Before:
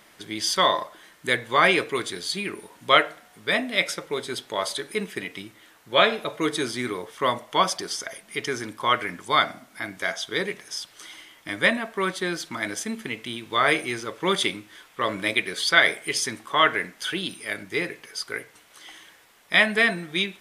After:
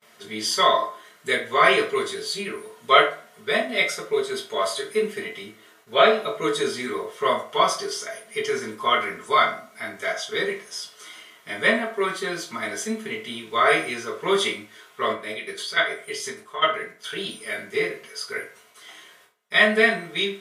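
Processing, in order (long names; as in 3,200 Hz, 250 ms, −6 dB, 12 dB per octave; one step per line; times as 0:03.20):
noise gate with hold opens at −44 dBFS
low-shelf EQ 150 Hz −9.5 dB
0:15.12–0:17.16: output level in coarse steps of 16 dB
convolution reverb RT60 0.40 s, pre-delay 4 ms, DRR −8 dB
level −7 dB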